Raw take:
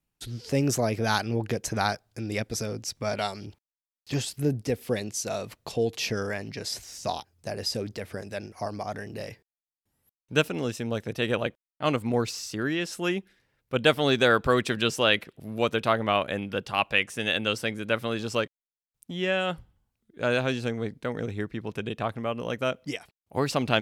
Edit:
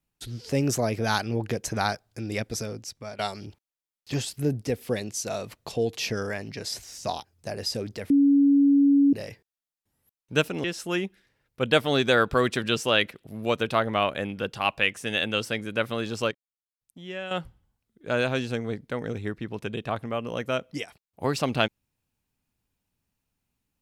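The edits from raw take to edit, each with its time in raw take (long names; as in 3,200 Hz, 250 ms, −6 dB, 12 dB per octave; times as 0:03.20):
0:02.53–0:03.19: fade out, to −13 dB
0:08.10–0:09.13: beep over 281 Hz −15 dBFS
0:10.64–0:12.77: remove
0:18.44–0:19.44: clip gain −9 dB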